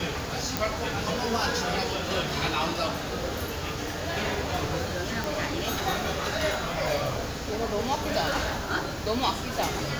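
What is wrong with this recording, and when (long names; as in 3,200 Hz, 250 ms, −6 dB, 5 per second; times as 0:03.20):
0:00.57: click
0:05.24: click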